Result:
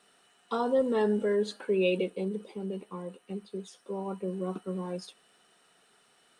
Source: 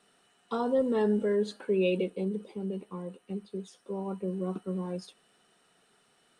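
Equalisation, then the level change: low shelf 340 Hz -6.5 dB; +3.0 dB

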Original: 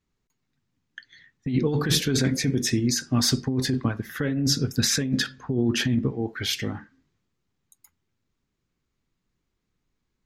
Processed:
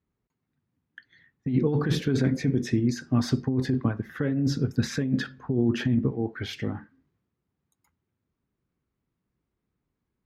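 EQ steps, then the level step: HPF 51 Hz; high shelf 2300 Hz -10.5 dB; high shelf 4900 Hz -10 dB; 0.0 dB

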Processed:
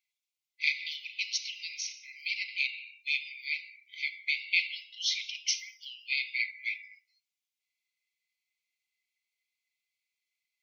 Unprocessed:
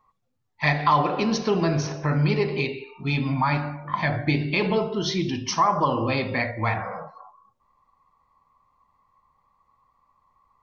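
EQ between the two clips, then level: brick-wall FIR high-pass 2000 Hz; 0.0 dB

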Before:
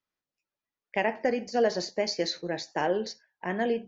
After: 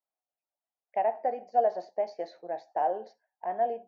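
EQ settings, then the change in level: band-pass 720 Hz, Q 5.9; +7.0 dB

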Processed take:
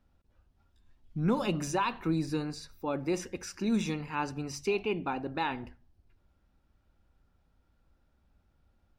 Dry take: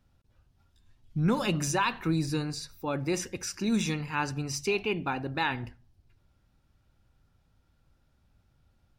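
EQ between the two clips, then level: dynamic EQ 1700 Hz, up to -5 dB, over -44 dBFS, Q 2.3; bell 120 Hz -10.5 dB 0.62 oct; high shelf 2700 Hz -8.5 dB; 0.0 dB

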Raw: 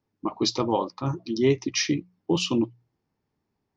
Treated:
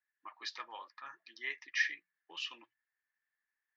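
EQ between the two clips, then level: ladder band-pass 1800 Hz, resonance 85%; +3.0 dB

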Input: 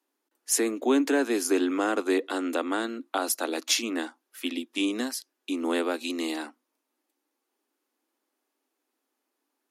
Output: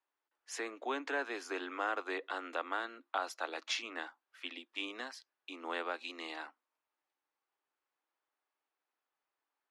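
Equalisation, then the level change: HPF 930 Hz 12 dB/oct; tape spacing loss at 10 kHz 28 dB; 0.0 dB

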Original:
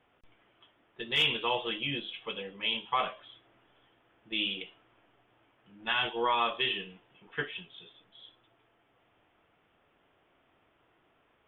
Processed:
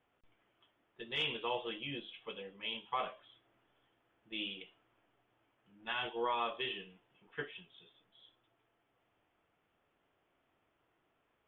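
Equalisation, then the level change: dynamic EQ 480 Hz, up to +4 dB, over -41 dBFS, Q 0.77; air absorption 62 m; -8.5 dB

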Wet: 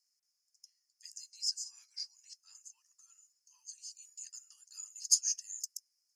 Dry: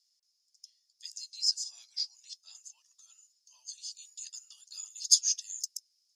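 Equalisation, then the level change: HPF 670 Hz; fixed phaser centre 1500 Hz, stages 4; 0.0 dB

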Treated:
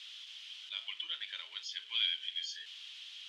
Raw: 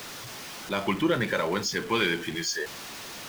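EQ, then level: ladder band-pass 3400 Hz, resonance 75%; high shelf 4700 Hz -8 dB; +2.5 dB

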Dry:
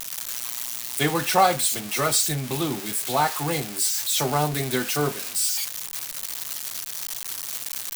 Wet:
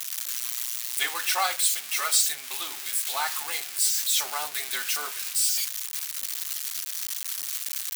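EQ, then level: HPF 1400 Hz 12 dB/oct; 0.0 dB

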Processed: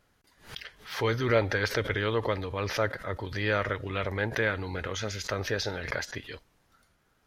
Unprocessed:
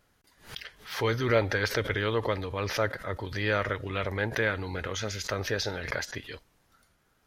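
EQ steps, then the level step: high shelf 7500 Hz -4 dB; 0.0 dB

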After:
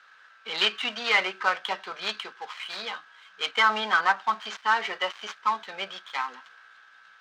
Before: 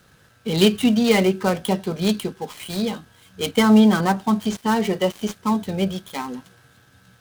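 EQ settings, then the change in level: resonant high-pass 1300 Hz, resonance Q 1.7; air absorption 170 m; +2.0 dB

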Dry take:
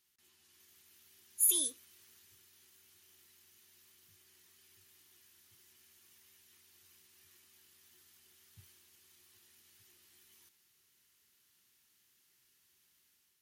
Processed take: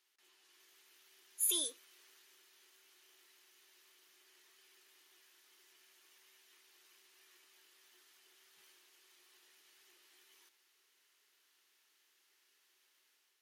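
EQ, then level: HPF 370 Hz 24 dB/oct; high shelf 6300 Hz -12 dB; +4.0 dB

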